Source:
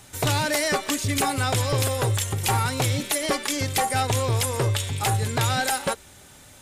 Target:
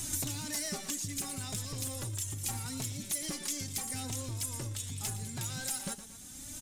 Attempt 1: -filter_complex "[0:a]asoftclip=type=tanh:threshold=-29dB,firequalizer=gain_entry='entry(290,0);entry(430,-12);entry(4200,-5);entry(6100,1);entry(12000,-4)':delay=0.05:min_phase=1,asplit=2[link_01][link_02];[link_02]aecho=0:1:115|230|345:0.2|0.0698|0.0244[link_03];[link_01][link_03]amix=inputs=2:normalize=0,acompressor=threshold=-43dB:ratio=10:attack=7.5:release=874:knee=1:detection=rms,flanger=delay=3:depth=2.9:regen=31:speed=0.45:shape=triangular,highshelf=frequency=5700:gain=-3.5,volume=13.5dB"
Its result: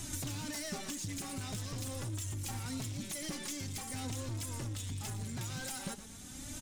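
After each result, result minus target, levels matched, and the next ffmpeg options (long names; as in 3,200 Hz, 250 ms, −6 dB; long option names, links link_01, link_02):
soft clipping: distortion +11 dB; 8,000 Hz band −2.5 dB
-filter_complex "[0:a]asoftclip=type=tanh:threshold=-19dB,firequalizer=gain_entry='entry(290,0);entry(430,-12);entry(4200,-5);entry(6100,1);entry(12000,-4)':delay=0.05:min_phase=1,asplit=2[link_01][link_02];[link_02]aecho=0:1:115|230|345:0.2|0.0698|0.0244[link_03];[link_01][link_03]amix=inputs=2:normalize=0,acompressor=threshold=-43dB:ratio=10:attack=7.5:release=874:knee=1:detection=rms,flanger=delay=3:depth=2.9:regen=31:speed=0.45:shape=triangular,highshelf=frequency=5700:gain=-3.5,volume=13.5dB"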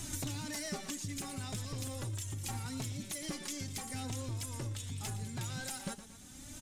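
8,000 Hz band −3.0 dB
-filter_complex "[0:a]asoftclip=type=tanh:threshold=-19dB,firequalizer=gain_entry='entry(290,0);entry(430,-12);entry(4200,-5);entry(6100,1);entry(12000,-4)':delay=0.05:min_phase=1,asplit=2[link_01][link_02];[link_02]aecho=0:1:115|230|345:0.2|0.0698|0.0244[link_03];[link_01][link_03]amix=inputs=2:normalize=0,acompressor=threshold=-43dB:ratio=10:attack=7.5:release=874:knee=1:detection=rms,flanger=delay=3:depth=2.9:regen=31:speed=0.45:shape=triangular,highshelf=frequency=5700:gain=7,volume=13.5dB"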